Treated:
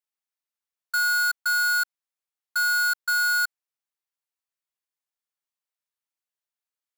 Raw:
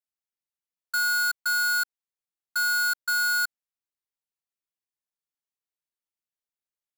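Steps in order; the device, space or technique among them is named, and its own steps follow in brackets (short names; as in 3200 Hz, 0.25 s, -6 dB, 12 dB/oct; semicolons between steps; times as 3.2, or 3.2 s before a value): filter by subtraction (in parallel: LPF 1000 Hz 12 dB/oct + phase invert)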